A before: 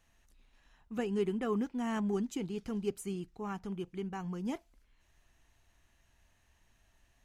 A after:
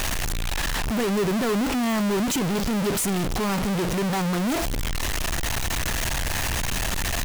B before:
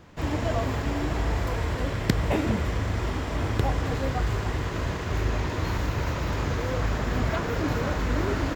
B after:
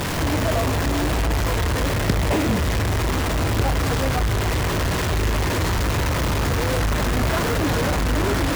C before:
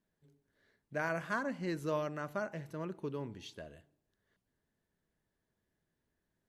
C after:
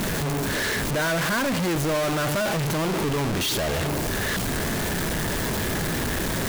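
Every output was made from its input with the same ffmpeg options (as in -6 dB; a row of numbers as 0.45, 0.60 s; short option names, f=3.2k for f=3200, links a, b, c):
-af "aeval=exprs='val(0)+0.5*0.126*sgn(val(0))':c=same,volume=-1dB"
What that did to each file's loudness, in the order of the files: +12.0, +6.0, +14.0 LU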